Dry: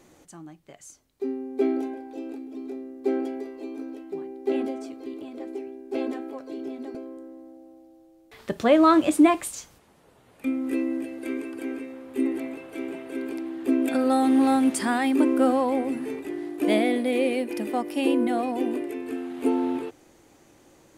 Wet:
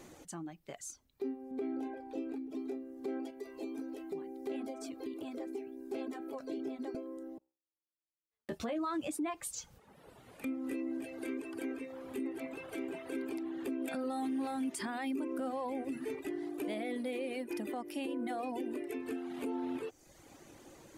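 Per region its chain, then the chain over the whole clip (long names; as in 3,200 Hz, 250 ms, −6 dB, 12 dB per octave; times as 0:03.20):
0:01.51–0:02.51: bass and treble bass +3 dB, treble −6 dB + downward compressor 2.5 to 1, threshold −26 dBFS
0:03.30–0:06.46: high-shelf EQ 6,600 Hz +6.5 dB + downward compressor 1.5 to 1, threshold −39 dBFS
0:07.38–0:08.79: noise gate −42 dBFS, range −51 dB + double-tracking delay 13 ms −3.5 dB
whole clip: reverb reduction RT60 0.73 s; downward compressor 2 to 1, threshold −42 dBFS; brickwall limiter −31.5 dBFS; level +2 dB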